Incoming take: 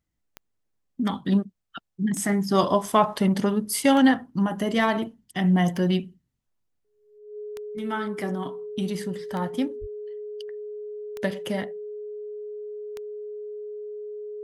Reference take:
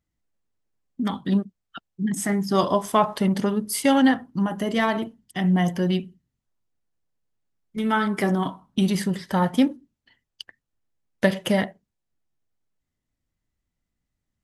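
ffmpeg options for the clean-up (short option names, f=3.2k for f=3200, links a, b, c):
-filter_complex "[0:a]adeclick=t=4,bandreject=f=420:w=30,asplit=3[a][b][c];[a]afade=t=out:st=9.8:d=0.02[d];[b]highpass=f=140:w=0.5412,highpass=f=140:w=1.3066,afade=t=in:st=9.8:d=0.02,afade=t=out:st=9.92:d=0.02[e];[c]afade=t=in:st=9.92:d=0.02[f];[d][e][f]amix=inputs=3:normalize=0,asetnsamples=n=441:p=0,asendcmd='7.18 volume volume 7.5dB',volume=0dB"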